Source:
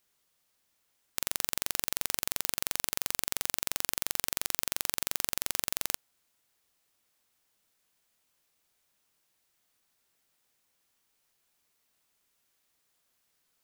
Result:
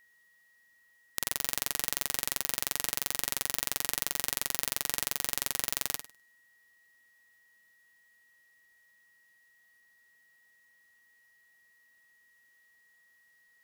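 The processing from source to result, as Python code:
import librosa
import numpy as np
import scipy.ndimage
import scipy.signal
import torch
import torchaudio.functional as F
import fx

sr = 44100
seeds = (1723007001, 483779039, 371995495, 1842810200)

y = x + 10.0 ** (-61.0 / 20.0) * np.sin(2.0 * np.pi * 1900.0 * np.arange(len(x)) / sr)
y = fx.room_flutter(y, sr, wall_m=8.7, rt60_s=0.34)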